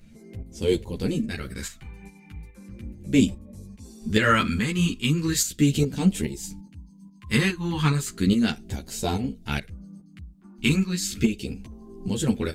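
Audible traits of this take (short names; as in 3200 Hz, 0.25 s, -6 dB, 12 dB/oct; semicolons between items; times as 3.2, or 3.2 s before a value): phasing stages 2, 0.36 Hz, lowest notch 560–1300 Hz; tremolo saw up 2.4 Hz, depth 60%; a shimmering, thickened sound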